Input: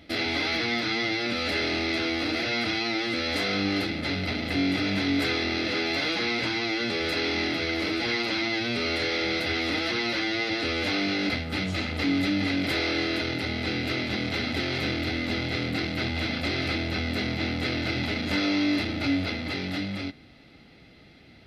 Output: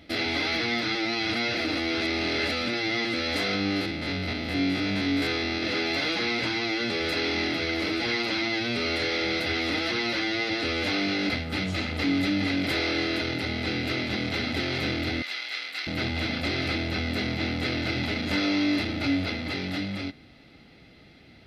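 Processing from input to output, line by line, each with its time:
0.95–3.05 reverse
3.55–5.63 stepped spectrum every 50 ms
15.22–15.87 HPF 1400 Hz

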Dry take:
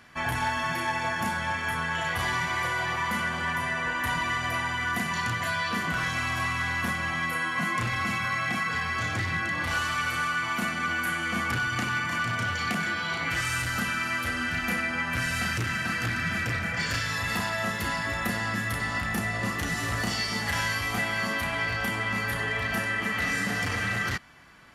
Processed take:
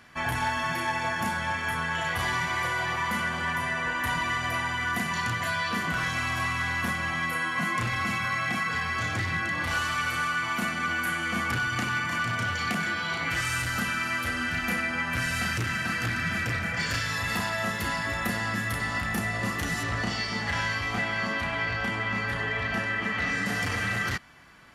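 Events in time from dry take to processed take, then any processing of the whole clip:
19.83–23.46 Bessel low-pass 4700 Hz

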